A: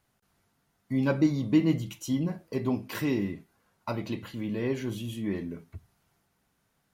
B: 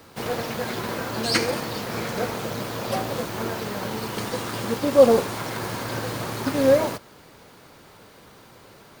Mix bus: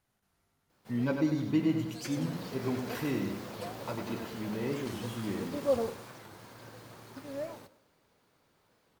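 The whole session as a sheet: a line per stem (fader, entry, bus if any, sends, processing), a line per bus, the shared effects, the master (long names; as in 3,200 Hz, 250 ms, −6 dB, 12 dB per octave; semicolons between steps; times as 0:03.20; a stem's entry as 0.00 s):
−5.5 dB, 0.00 s, no send, echo send −5.5 dB, no processing
0:01.99 −23 dB → 0:02.41 −14 dB → 0:05.69 −14 dB → 0:06.32 −21 dB, 0.70 s, no send, echo send −18 dB, no processing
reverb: not used
echo: repeating echo 99 ms, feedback 44%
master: wow of a warped record 45 rpm, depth 160 cents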